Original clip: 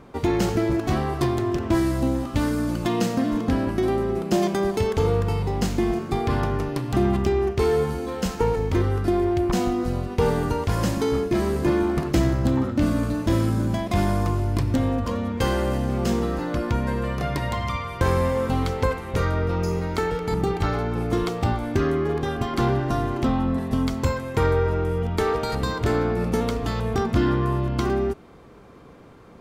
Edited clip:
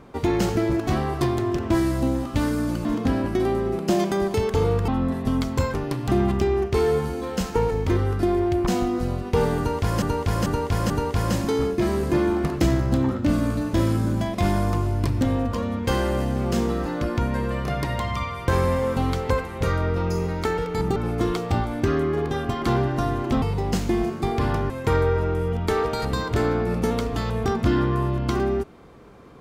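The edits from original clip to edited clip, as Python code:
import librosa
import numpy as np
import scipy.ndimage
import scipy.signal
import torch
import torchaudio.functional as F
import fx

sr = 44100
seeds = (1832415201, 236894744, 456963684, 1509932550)

y = fx.edit(x, sr, fx.cut(start_s=2.85, length_s=0.43),
    fx.swap(start_s=5.31, length_s=1.28, other_s=23.34, other_length_s=0.86),
    fx.repeat(start_s=10.43, length_s=0.44, count=4),
    fx.cut(start_s=20.49, length_s=0.39), tone=tone)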